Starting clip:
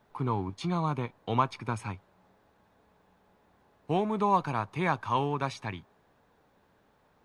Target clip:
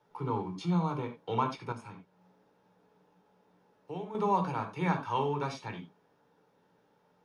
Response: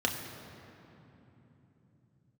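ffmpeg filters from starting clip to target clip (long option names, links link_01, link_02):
-filter_complex "[1:a]atrim=start_sample=2205,afade=type=out:start_time=0.23:duration=0.01,atrim=end_sample=10584,asetrate=79380,aresample=44100[link_01];[0:a][link_01]afir=irnorm=-1:irlink=0,asettb=1/sr,asplit=3[link_02][link_03][link_04];[link_02]atrim=end=1.724[link_05];[link_03]atrim=start=1.72:end=4.15,asetpts=PTS-STARTPTS,afade=type=in:duration=0.004:curve=qsin,afade=type=out:start_time=2.426:duration=0.004:curve=qsin,acompressor=threshold=-47dB:ratio=1.5[link_06];[link_04]atrim=start=4.146[link_07];[link_05][link_06]acrossfade=duration=0.004:curve1=hsin:curve2=qsin[link_08];[link_08][link_07]acrossfade=duration=0.004:curve1=qsin:curve2=hsin,volume=-6.5dB"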